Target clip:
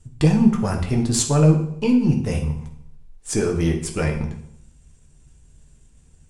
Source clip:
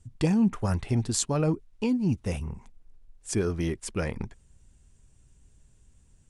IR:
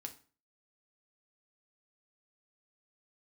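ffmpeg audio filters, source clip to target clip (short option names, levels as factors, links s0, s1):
-filter_complex "[0:a]aeval=exprs='if(lt(val(0),0),0.708*val(0),val(0))':c=same[s0];[1:a]atrim=start_sample=2205,asetrate=23373,aresample=44100[s1];[s0][s1]afir=irnorm=-1:irlink=0,volume=2.51"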